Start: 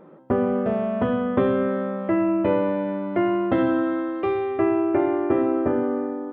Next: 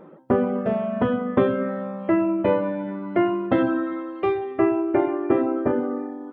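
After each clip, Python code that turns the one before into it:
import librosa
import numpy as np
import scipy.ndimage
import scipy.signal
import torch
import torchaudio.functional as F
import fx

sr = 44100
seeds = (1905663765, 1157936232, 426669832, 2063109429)

y = fx.dereverb_blind(x, sr, rt60_s=0.86)
y = fx.peak_eq(y, sr, hz=88.0, db=-12.0, octaves=0.21)
y = y * 10.0 ** (2.5 / 20.0)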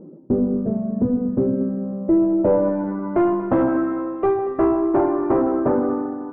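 y = 10.0 ** (-18.5 / 20.0) * np.tanh(x / 10.0 ** (-18.5 / 20.0))
y = fx.filter_sweep_lowpass(y, sr, from_hz=310.0, to_hz=990.0, start_s=1.78, end_s=2.9, q=1.2)
y = fx.echo_heads(y, sr, ms=78, heads='all three', feedback_pct=52, wet_db=-17)
y = y * 10.0 ** (5.5 / 20.0)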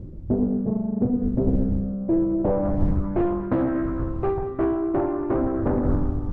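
y = fx.dmg_wind(x, sr, seeds[0], corner_hz=100.0, level_db=-30.0)
y = fx.bass_treble(y, sr, bass_db=9, treble_db=14)
y = fx.doppler_dist(y, sr, depth_ms=0.74)
y = y * 10.0 ** (-7.0 / 20.0)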